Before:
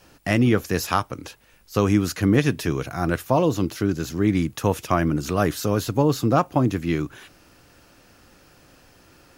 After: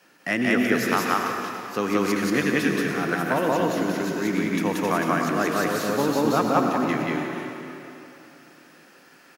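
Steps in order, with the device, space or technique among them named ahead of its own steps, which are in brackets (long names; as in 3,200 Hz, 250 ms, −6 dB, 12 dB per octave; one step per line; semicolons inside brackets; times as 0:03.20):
stadium PA (high-pass filter 170 Hz 24 dB per octave; parametric band 1,800 Hz +7.5 dB 0.96 octaves; loudspeakers that aren't time-aligned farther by 62 metres 0 dB, 99 metres −11 dB; convolution reverb RT60 3.1 s, pre-delay 81 ms, DRR 3.5 dB)
level −5.5 dB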